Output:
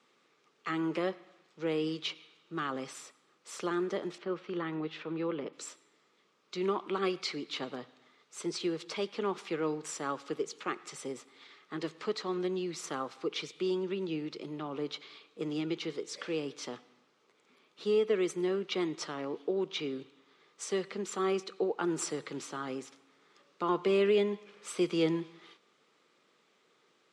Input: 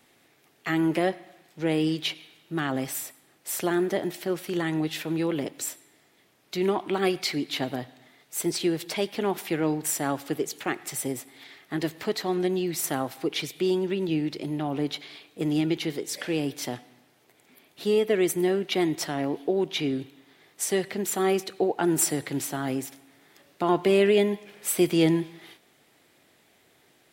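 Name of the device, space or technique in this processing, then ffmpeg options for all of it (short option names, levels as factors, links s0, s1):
television speaker: -filter_complex "[0:a]asettb=1/sr,asplit=3[s0][s1][s2];[s0]atrim=end=4.184[s3];[s1]atrim=start=4.18:end=5.53,asetpts=PTS-STARTPTS,afade=t=in:d=0.004:c=qsin,afade=t=out:st=1.346:d=0.004:c=qsin,lowpass=2900[s4];[s2]atrim=start=5.526[s5];[s3][s4]acrossfade=d=0.004:c1=hsin:c2=qsin[s6];[s6][s5]acrossfade=d=0.004:c1=qsin:c2=hsin,highpass=f=170:w=0.5412,highpass=f=170:w=1.3066,equalizer=f=280:t=q:w=4:g=-5,equalizer=f=470:t=q:w=4:g=5,equalizer=f=700:t=q:w=4:g=-8,equalizer=f=1200:t=q:w=4:g=10,equalizer=f=1800:t=q:w=4:g=-4,lowpass=f=7000:w=0.5412,lowpass=f=7000:w=1.3066,volume=0.447"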